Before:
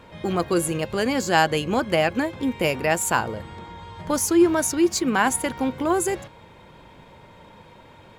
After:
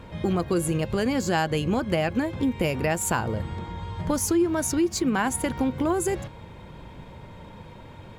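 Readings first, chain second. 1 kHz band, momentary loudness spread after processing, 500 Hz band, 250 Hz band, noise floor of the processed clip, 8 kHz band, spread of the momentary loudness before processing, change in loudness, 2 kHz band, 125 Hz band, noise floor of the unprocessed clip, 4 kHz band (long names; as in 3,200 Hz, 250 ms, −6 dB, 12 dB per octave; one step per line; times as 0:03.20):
−5.5 dB, 20 LU, −3.5 dB, −1.5 dB, −44 dBFS, −3.5 dB, 12 LU, −3.5 dB, −5.5 dB, +3.5 dB, −49 dBFS, −5.0 dB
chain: low-shelf EQ 230 Hz +10.5 dB
downward compressor 3 to 1, threshold −22 dBFS, peak gain reduction 10.5 dB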